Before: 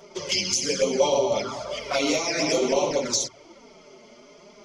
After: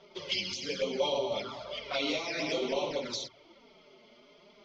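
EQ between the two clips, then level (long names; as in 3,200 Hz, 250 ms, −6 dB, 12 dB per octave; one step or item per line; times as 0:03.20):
transistor ladder low-pass 4,300 Hz, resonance 50%
0.0 dB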